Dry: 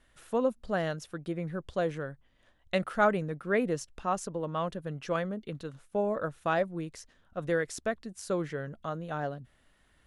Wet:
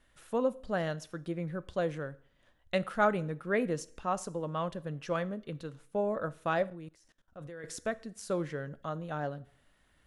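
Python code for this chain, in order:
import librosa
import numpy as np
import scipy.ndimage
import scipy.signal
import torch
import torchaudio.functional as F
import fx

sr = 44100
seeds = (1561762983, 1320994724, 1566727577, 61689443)

y = fx.rev_double_slope(x, sr, seeds[0], early_s=0.52, late_s=1.7, knee_db=-27, drr_db=15.5)
y = fx.level_steps(y, sr, step_db=21, at=(6.68, 7.64))
y = y * 10.0 ** (-2.0 / 20.0)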